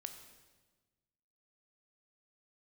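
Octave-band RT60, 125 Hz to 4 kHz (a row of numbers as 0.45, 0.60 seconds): 1.8, 1.6, 1.4, 1.2, 1.2, 1.2 seconds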